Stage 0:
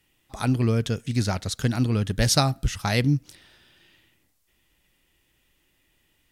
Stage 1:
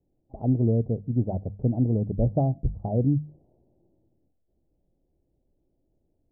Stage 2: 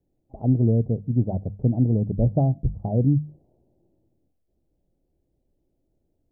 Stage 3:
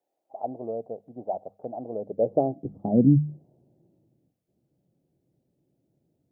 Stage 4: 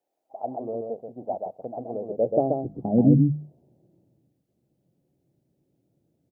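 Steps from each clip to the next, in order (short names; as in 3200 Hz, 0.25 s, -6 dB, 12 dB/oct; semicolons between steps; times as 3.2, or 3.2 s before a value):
steep low-pass 720 Hz 48 dB/oct; notches 50/100/150/200 Hz
dynamic EQ 150 Hz, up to +4 dB, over -36 dBFS, Q 0.78
high-pass sweep 720 Hz -> 140 Hz, 1.82–3.44
echo 0.132 s -4 dB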